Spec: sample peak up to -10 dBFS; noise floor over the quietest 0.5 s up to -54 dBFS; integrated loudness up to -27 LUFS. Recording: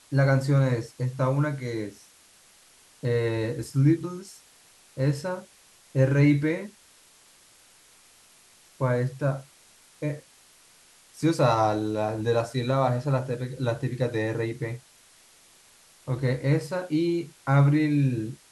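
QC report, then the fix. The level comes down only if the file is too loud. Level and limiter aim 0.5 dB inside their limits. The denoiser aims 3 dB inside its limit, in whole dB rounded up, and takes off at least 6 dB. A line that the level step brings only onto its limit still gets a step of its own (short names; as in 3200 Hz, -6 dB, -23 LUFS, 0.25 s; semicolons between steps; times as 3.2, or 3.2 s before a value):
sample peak -8.0 dBFS: fail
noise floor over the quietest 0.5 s -57 dBFS: OK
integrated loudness -26.0 LUFS: fail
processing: gain -1.5 dB; limiter -10.5 dBFS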